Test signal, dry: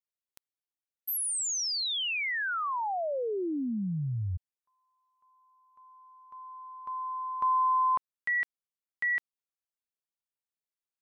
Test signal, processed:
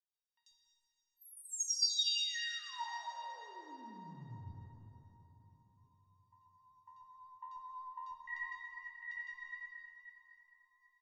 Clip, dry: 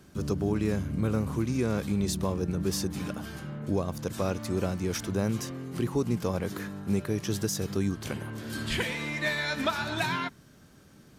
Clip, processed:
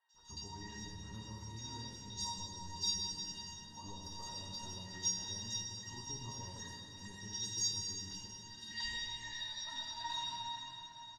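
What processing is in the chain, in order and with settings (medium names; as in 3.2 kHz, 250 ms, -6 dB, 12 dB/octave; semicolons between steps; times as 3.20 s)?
doubling 20 ms -13.5 dB; plate-style reverb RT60 4.1 s, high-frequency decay 0.65×, DRR -1 dB; vibrato 9.1 Hz 29 cents; distance through air 70 m; hum notches 50/100/150/200 Hz; feedback comb 940 Hz, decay 0.25 s, mix 100%; three bands offset in time mids, highs, lows 90/140 ms, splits 650/2300 Hz; gain riding within 3 dB 2 s; high-order bell 4.7 kHz +13.5 dB 1.3 oct; trim +5.5 dB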